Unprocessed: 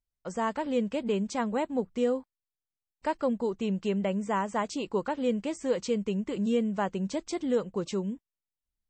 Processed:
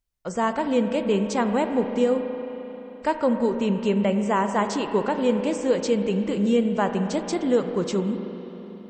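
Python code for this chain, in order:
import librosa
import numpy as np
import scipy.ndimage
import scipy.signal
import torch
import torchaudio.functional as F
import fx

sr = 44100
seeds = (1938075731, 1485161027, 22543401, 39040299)

y = fx.rev_spring(x, sr, rt60_s=3.8, pass_ms=(34, 44), chirp_ms=55, drr_db=6.5)
y = y * librosa.db_to_amplitude(6.0)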